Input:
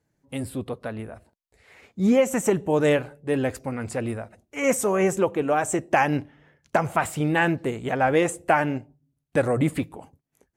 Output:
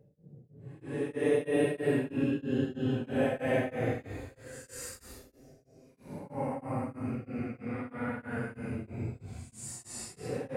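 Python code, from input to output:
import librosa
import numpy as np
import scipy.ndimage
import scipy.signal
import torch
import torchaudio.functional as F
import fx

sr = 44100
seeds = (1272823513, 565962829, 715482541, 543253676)

y = fx.paulstretch(x, sr, seeds[0], factor=14.0, window_s=0.05, from_s=3.21)
y = y * np.abs(np.cos(np.pi * 3.1 * np.arange(len(y)) / sr))
y = y * 10.0 ** (-4.0 / 20.0)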